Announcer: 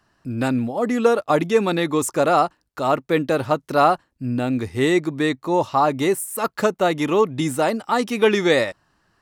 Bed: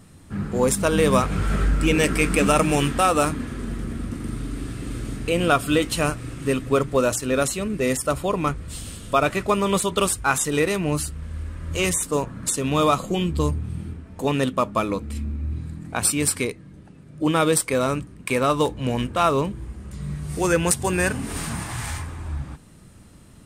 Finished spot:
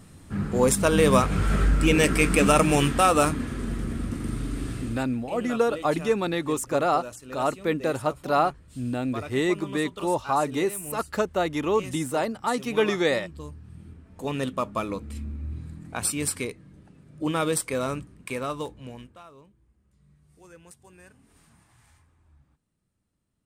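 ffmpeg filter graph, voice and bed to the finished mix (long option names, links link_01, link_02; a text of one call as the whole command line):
ffmpeg -i stem1.wav -i stem2.wav -filter_complex "[0:a]adelay=4550,volume=-6dB[link_01];[1:a]volume=11dB,afade=type=out:start_time=4.76:duration=0.29:silence=0.141254,afade=type=in:start_time=13.6:duration=0.88:silence=0.266073,afade=type=out:start_time=17.9:duration=1.34:silence=0.0630957[link_02];[link_01][link_02]amix=inputs=2:normalize=0" out.wav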